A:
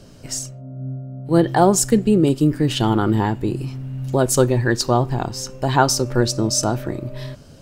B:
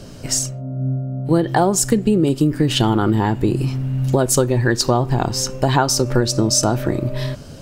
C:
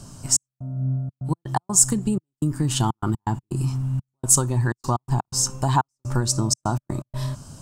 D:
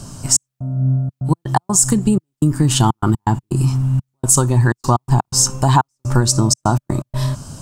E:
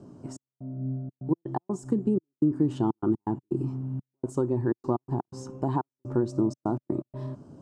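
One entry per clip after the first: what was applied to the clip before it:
downward compressor, threshold −20 dBFS, peak gain reduction 10.5 dB; level +7.5 dB
gate pattern "xxx..xxxx.x.x.x" 124 BPM −60 dB; octave-band graphic EQ 125/500/1,000/2,000/4,000/8,000 Hz +4/−11/+10/−8/−4/+12 dB; level −6 dB
boost into a limiter +9 dB; level −1 dB
resonant band-pass 350 Hz, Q 2.2; level −2.5 dB

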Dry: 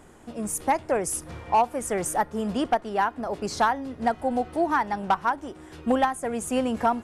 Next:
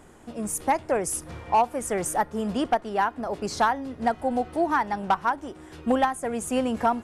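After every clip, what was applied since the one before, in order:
no processing that can be heard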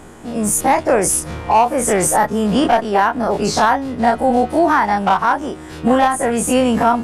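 every bin's largest magnitude spread in time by 60 ms
parametric band 200 Hz +2 dB
brickwall limiter −13 dBFS, peak gain reduction 5.5 dB
level +8 dB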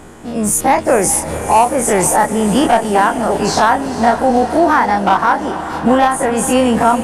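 feedback delay with all-pass diffusion 466 ms, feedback 61%, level −12 dB
level +2 dB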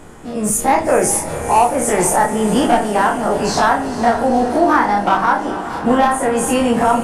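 rectangular room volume 53 cubic metres, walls mixed, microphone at 0.36 metres
level −3.5 dB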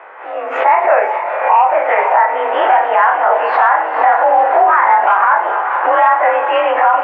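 single-sideband voice off tune +52 Hz 560–2,400 Hz
boost into a limiter +10.5 dB
background raised ahead of every attack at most 82 dB per second
level −1.5 dB

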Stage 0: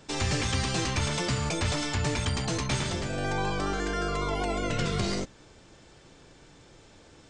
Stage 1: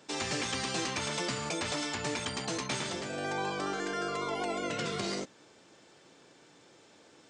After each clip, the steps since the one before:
high-pass filter 220 Hz 12 dB per octave
level −3 dB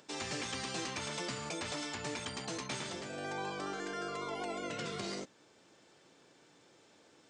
upward compression, threshold −54 dBFS
level −5.5 dB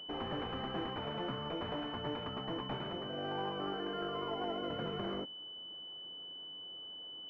switching amplifier with a slow clock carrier 3,000 Hz
level +2 dB

